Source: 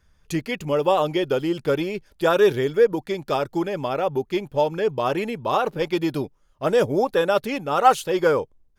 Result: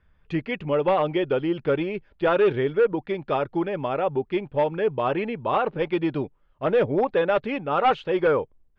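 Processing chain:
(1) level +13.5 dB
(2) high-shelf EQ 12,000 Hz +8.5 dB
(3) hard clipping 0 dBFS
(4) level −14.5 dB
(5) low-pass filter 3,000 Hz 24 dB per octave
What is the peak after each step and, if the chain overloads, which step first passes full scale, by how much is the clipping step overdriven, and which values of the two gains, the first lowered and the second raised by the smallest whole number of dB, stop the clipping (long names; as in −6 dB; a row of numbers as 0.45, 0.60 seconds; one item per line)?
+9.5, +9.5, 0.0, −14.5, −13.0 dBFS
step 1, 9.5 dB
step 1 +3.5 dB, step 4 −4.5 dB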